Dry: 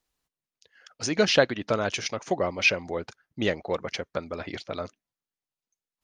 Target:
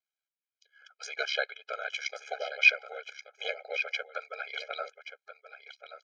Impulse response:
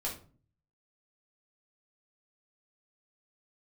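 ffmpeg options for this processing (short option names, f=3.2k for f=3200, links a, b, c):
-af "dynaudnorm=f=220:g=5:m=14dB,aeval=exprs='val(0)*sin(2*PI*35*n/s)':c=same,bandpass=f=2.2k:t=q:w=1.2:csg=0,aecho=1:1:1129:0.266,afftfilt=real='re*eq(mod(floor(b*sr/1024/420),2),1)':imag='im*eq(mod(floor(b*sr/1024/420),2),1)':win_size=1024:overlap=0.75,volume=-2dB"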